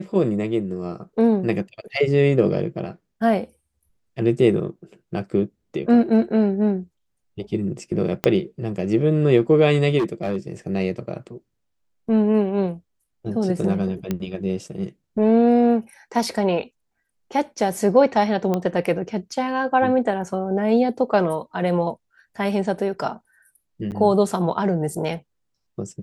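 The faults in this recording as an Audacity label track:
8.240000	8.240000	pop -6 dBFS
9.980000	10.370000	clipped -18 dBFS
14.110000	14.110000	pop -11 dBFS
18.540000	18.540000	pop -11 dBFS
23.910000	23.920000	gap 8.7 ms

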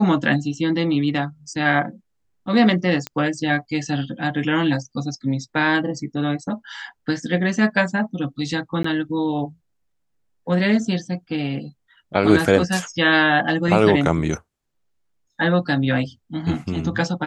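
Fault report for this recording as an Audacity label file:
3.070000	3.070000	pop -11 dBFS
8.830000	8.840000	gap 14 ms

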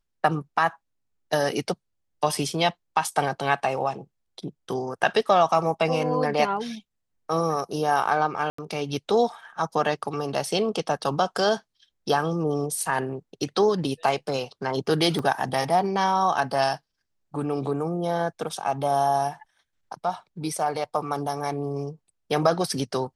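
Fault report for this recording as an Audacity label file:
8.500000	8.580000	gap 84 ms
15.190000	15.190000	gap 3.1 ms

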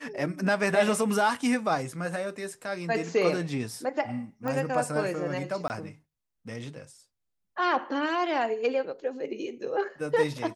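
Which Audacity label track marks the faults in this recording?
4.480000	4.480000	pop -20 dBFS
5.680000	5.700000	gap 19 ms

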